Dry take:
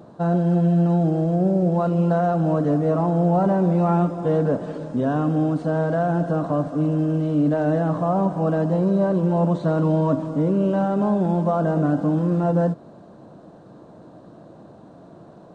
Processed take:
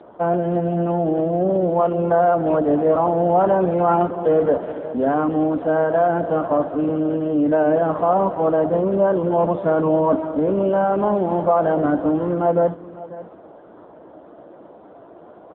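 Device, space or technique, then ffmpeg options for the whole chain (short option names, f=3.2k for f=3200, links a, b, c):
satellite phone: -af "highpass=360,lowpass=3k,aecho=1:1:546:0.141,volume=7dB" -ar 8000 -c:a libopencore_amrnb -b:a 5900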